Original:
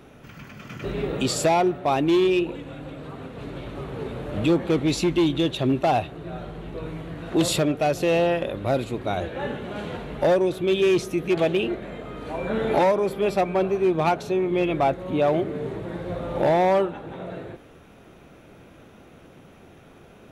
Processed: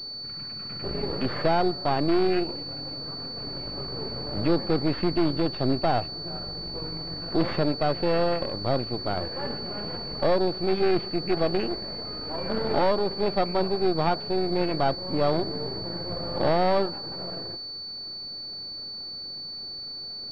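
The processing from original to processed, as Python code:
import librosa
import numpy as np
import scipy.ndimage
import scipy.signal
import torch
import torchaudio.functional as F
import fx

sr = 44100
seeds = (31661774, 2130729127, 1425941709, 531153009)

y = np.where(x < 0.0, 10.0 ** (-12.0 / 20.0) * x, x)
y = fx.pwm(y, sr, carrier_hz=4500.0)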